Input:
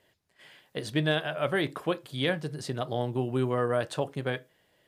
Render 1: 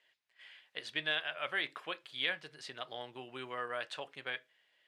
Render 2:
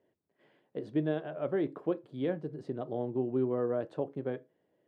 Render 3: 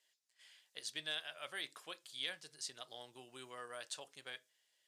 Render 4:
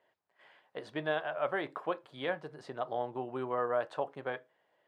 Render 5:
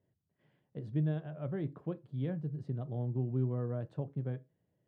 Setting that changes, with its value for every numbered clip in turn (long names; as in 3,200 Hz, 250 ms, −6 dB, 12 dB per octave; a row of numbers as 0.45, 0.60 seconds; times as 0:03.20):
resonant band-pass, frequency: 2,500, 330, 6,600, 900, 130 Hertz